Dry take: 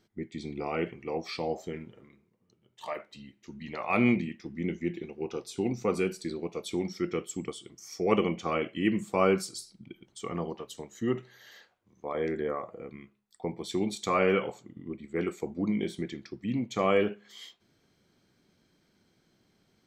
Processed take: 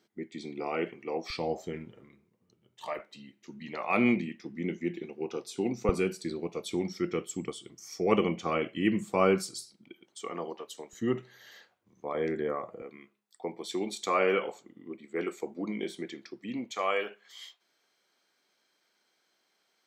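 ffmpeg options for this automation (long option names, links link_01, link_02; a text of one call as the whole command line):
ffmpeg -i in.wav -af "asetnsamples=nb_out_samples=441:pad=0,asendcmd='1.3 highpass f 59;2.99 highpass f 170;5.89 highpass f 80;9.74 highpass f 340;10.93 highpass f 99;12.82 highpass f 310;16.71 highpass f 690',highpass=230" out.wav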